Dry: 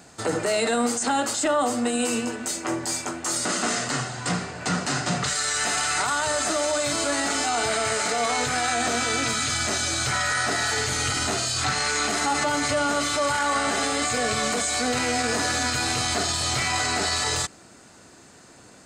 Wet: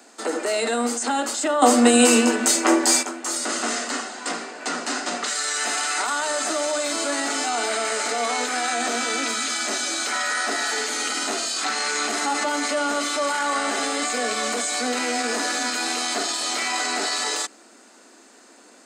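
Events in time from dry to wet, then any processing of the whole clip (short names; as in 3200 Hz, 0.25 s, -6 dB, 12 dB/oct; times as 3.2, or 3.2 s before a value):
1.62–3.03 gain +10 dB
whole clip: steep high-pass 220 Hz 72 dB/oct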